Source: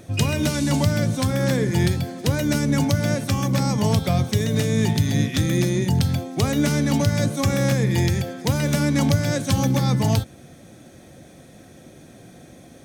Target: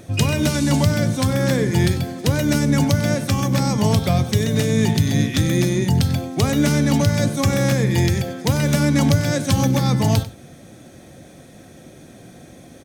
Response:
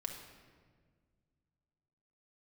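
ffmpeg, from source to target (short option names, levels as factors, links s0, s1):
-af "aecho=1:1:95:0.158,volume=1.33"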